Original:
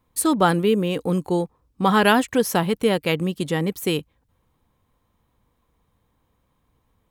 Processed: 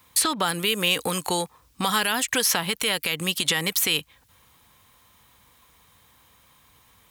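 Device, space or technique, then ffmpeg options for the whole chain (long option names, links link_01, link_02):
mastering chain: -filter_complex "[0:a]highpass=50,equalizer=frequency=370:width_type=o:width=1.6:gain=-3,acrossover=split=600|4800[link_01][link_02][link_03];[link_01]acompressor=threshold=-34dB:ratio=4[link_04];[link_02]acompressor=threshold=-34dB:ratio=4[link_05];[link_03]acompressor=threshold=-45dB:ratio=4[link_06];[link_04][link_05][link_06]amix=inputs=3:normalize=0,acompressor=threshold=-31dB:ratio=3,tiltshelf=frequency=1100:gain=-8.5,alimiter=level_in=21.5dB:limit=-1dB:release=50:level=0:latency=1,volume=-8.5dB"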